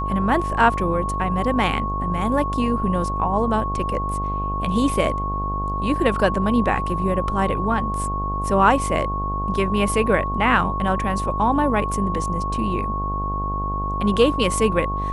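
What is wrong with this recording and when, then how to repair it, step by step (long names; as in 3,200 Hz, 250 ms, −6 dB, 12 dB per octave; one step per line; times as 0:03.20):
mains buzz 50 Hz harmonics 23 −27 dBFS
whistle 1,100 Hz −25 dBFS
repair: hum removal 50 Hz, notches 23
notch filter 1,100 Hz, Q 30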